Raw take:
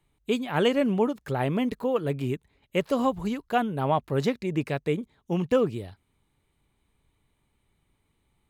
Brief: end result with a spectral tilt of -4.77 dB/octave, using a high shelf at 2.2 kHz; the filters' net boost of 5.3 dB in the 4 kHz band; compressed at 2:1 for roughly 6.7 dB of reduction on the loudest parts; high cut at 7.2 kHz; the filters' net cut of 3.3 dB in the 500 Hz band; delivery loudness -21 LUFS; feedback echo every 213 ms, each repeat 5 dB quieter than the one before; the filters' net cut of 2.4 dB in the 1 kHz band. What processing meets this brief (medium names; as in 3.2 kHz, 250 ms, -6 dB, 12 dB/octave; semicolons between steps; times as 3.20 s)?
low-pass 7.2 kHz; peaking EQ 500 Hz -3.5 dB; peaking EQ 1 kHz -3 dB; treble shelf 2.2 kHz +5.5 dB; peaking EQ 4 kHz +3 dB; compression 2:1, threshold -32 dBFS; feedback delay 213 ms, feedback 56%, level -5 dB; trim +11 dB